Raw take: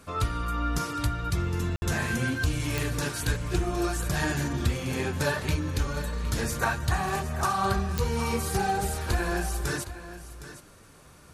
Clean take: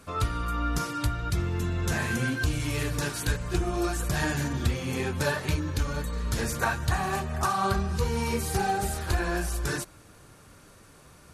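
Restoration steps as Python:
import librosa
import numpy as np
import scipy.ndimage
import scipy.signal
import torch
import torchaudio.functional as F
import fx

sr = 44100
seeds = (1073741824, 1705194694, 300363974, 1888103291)

y = fx.fix_declick_ar(x, sr, threshold=10.0)
y = fx.fix_ambience(y, sr, seeds[0], print_start_s=10.72, print_end_s=11.22, start_s=1.76, end_s=1.82)
y = fx.fix_echo_inverse(y, sr, delay_ms=763, level_db=-13.5)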